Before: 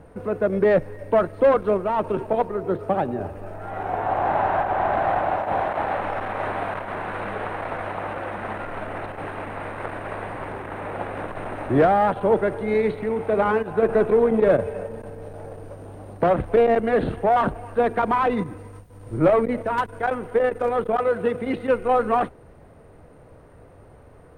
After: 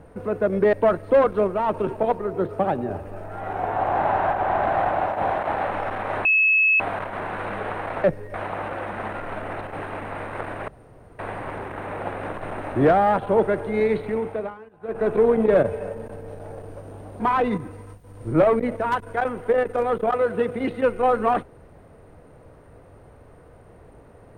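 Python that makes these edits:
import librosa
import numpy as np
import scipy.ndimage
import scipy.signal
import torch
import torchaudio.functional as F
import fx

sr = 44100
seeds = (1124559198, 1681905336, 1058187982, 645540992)

y = fx.edit(x, sr, fx.move(start_s=0.73, length_s=0.3, to_s=7.79),
    fx.insert_tone(at_s=6.55, length_s=0.55, hz=2590.0, db=-14.5),
    fx.insert_room_tone(at_s=10.13, length_s=0.51),
    fx.fade_down_up(start_s=13.1, length_s=1.03, db=-22.0, fade_s=0.39),
    fx.cut(start_s=16.14, length_s=1.92), tone=tone)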